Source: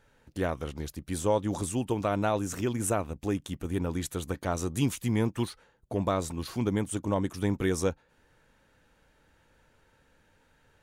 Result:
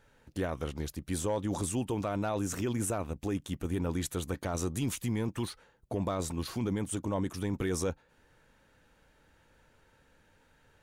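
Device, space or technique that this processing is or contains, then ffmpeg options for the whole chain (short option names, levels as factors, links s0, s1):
clipper into limiter: -af "asoftclip=type=hard:threshold=0.141,alimiter=limit=0.0668:level=0:latency=1:release=13"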